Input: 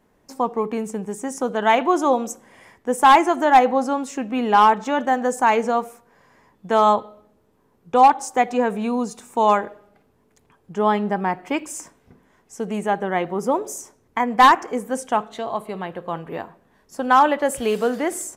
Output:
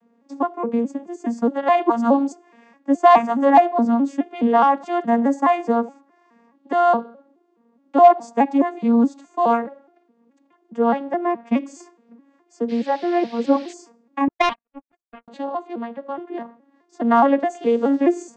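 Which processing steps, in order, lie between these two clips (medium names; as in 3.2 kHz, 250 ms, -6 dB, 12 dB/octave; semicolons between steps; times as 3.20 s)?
vocoder on a broken chord minor triad, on A#3, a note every 210 ms; 12.68–13.72 s: band noise 1.6–4.8 kHz -48 dBFS; 14.28–15.28 s: power-law waveshaper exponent 3; trim +2 dB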